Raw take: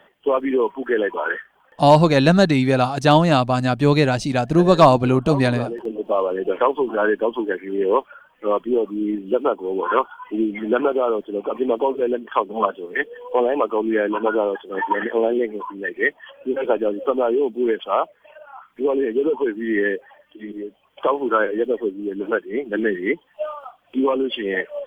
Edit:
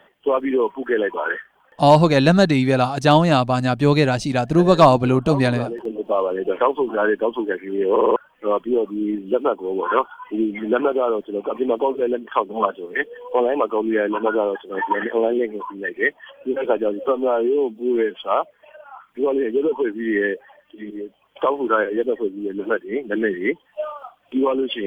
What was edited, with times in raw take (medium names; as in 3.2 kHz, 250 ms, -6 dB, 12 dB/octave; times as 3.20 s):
7.91 s: stutter in place 0.05 s, 5 plays
17.08–17.85 s: stretch 1.5×